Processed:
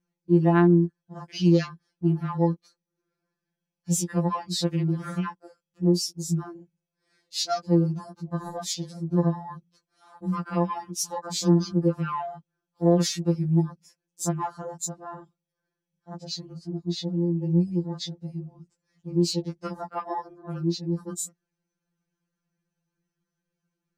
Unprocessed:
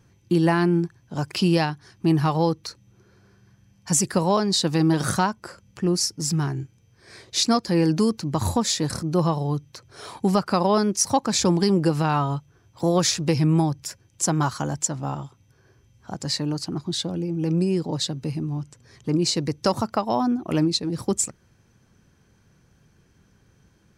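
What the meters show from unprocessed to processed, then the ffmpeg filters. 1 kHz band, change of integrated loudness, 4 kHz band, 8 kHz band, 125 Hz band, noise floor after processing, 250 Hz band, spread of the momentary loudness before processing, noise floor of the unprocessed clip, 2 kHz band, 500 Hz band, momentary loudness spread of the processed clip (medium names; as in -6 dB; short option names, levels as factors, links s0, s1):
-6.5 dB, -3.0 dB, -7.0 dB, -7.5 dB, -1.5 dB, under -85 dBFS, -2.5 dB, 11 LU, -60 dBFS, -7.5 dB, -4.0 dB, 15 LU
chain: -af "afwtdn=0.0224,afftfilt=real='re*2.83*eq(mod(b,8),0)':imag='im*2.83*eq(mod(b,8),0)':win_size=2048:overlap=0.75,volume=0.631"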